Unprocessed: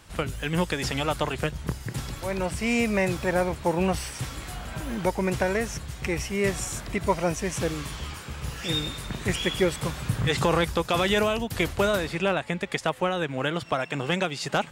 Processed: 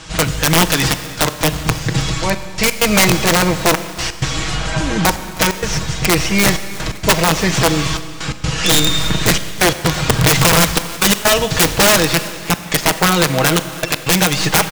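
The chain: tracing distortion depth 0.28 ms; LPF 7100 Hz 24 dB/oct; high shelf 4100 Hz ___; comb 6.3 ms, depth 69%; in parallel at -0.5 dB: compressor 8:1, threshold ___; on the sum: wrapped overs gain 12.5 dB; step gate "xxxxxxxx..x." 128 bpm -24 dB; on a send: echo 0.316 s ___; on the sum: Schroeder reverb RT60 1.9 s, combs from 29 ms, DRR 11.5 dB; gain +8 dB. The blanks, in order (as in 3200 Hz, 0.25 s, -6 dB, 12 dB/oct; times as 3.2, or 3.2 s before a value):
+9.5 dB, -28 dBFS, -20 dB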